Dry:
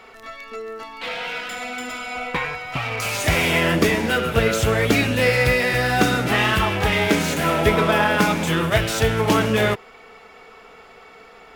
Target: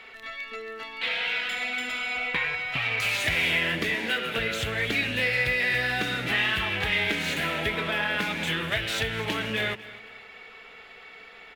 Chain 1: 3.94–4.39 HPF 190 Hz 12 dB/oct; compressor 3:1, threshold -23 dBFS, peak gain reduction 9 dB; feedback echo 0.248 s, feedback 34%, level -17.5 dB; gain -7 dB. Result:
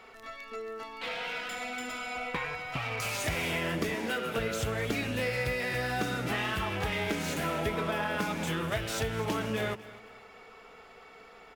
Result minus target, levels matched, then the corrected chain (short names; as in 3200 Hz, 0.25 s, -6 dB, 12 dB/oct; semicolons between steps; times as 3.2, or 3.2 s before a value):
2000 Hz band -2.5 dB
3.94–4.39 HPF 190 Hz 12 dB/oct; compressor 3:1, threshold -23 dBFS, peak gain reduction 9 dB; band shelf 2600 Hz +10 dB 1.6 oct; feedback echo 0.248 s, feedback 34%, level -17.5 dB; gain -7 dB